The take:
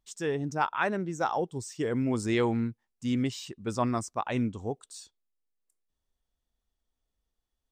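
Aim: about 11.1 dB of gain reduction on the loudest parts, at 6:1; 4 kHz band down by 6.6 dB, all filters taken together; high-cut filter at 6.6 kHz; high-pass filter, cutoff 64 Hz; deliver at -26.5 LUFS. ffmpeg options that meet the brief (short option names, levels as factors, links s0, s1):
-af "highpass=64,lowpass=6600,equalizer=f=4000:t=o:g=-8.5,acompressor=threshold=0.0178:ratio=6,volume=4.73"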